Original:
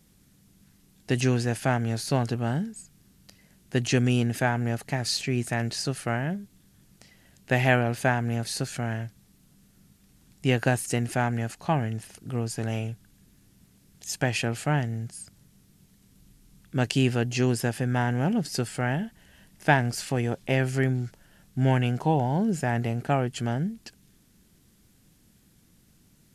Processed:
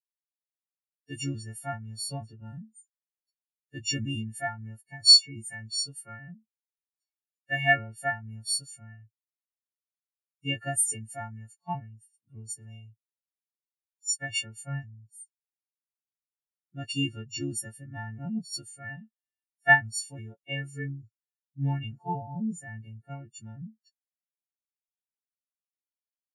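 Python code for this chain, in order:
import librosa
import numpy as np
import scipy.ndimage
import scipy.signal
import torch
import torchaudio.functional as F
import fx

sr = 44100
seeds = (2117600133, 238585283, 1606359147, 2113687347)

y = fx.freq_snap(x, sr, grid_st=4)
y = fx.dynamic_eq(y, sr, hz=830.0, q=0.87, threshold_db=-37.0, ratio=4.0, max_db=-4, at=(22.63, 23.31))
y = fx.spectral_expand(y, sr, expansion=2.5)
y = y * librosa.db_to_amplitude(-1.5)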